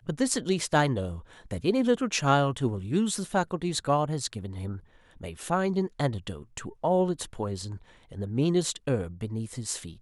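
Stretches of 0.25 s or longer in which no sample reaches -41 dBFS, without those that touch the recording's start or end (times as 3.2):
4.79–5.21
7.77–8.11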